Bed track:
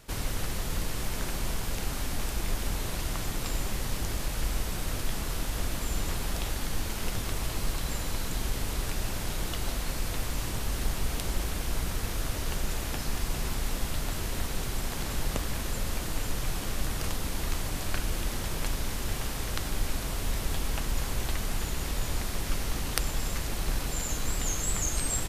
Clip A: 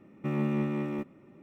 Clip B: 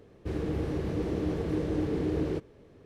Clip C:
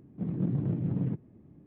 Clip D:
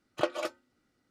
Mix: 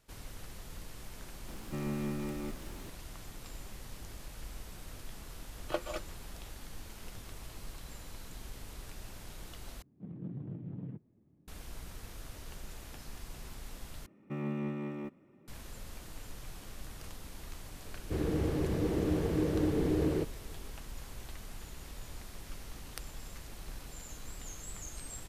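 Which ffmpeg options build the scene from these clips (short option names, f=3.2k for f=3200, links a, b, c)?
-filter_complex "[1:a]asplit=2[a][b];[0:a]volume=-15dB[c];[a]aeval=exprs='val(0)+0.5*0.0112*sgn(val(0))':c=same[d];[c]asplit=3[e][f][g];[e]atrim=end=9.824[h];[3:a]atrim=end=1.66,asetpts=PTS-STARTPTS,volume=-12.5dB[i];[f]atrim=start=11.476:end=14.064[j];[b]atrim=end=1.42,asetpts=PTS-STARTPTS,volume=-7dB[k];[g]atrim=start=15.476[l];[d]atrim=end=1.42,asetpts=PTS-STARTPTS,volume=-8dB,afade=t=in:d=0.004:c=hsin,afade=t=out:st=1.416:d=0.004:c=hsin,adelay=1480[m];[4:a]atrim=end=1.1,asetpts=PTS-STARTPTS,volume=-6dB,afade=t=in:d=0.004:c=hsin,afade=t=out:st=1.096:d=0.004:c=hsin,adelay=5510[n];[2:a]atrim=end=2.85,asetpts=PTS-STARTPTS,volume=-0.5dB,afade=t=in:d=0.004:c=hsin,afade=t=out:st=2.846:d=0.004:c=hsin,adelay=17850[o];[h][i]acrossfade=d=0.004:c1=hsin:c2=hsin[p];[p][j]acrossfade=d=0.004:c1=hsin:c2=hsin[q];[q][k]acrossfade=d=0.004:c1=hsin:c2=hsin[r];[r][l]acrossfade=d=0.004:c1=hsin:c2=hsin[s];[s][m][n][o]amix=inputs=4:normalize=0"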